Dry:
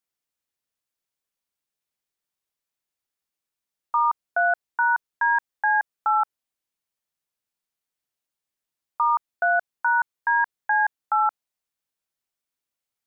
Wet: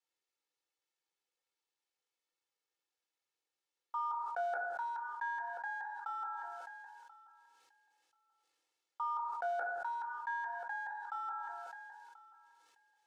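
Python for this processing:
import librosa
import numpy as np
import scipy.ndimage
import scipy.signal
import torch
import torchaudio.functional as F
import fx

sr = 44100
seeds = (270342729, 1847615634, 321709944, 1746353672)

y = fx.law_mismatch(x, sr, coded='mu')
y = scipy.signal.sosfilt(scipy.signal.butter(2, 450.0, 'highpass', fs=sr, output='sos'), y)
y = fx.peak_eq(y, sr, hz=1300.0, db=-5.5, octaves=1.9)
y = y + 0.65 * np.pad(y, (int(2.3 * sr / 1000.0), 0))[:len(y)]
y = fx.level_steps(y, sr, step_db=16)
y = fx.air_absorb(y, sr, metres=84.0)
y = fx.echo_feedback(y, sr, ms=1034, feedback_pct=17, wet_db=-22.0)
y = fx.rev_fdn(y, sr, rt60_s=0.67, lf_ratio=1.45, hf_ratio=0.3, size_ms=58.0, drr_db=3.5)
y = fx.sustainer(y, sr, db_per_s=21.0)
y = F.gain(torch.from_numpy(y), -6.0).numpy()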